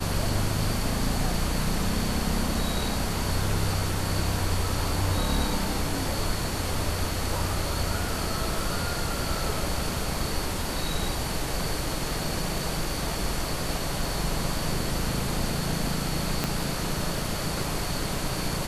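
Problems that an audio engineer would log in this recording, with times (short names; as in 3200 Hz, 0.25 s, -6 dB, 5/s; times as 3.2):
16.44 pop -10 dBFS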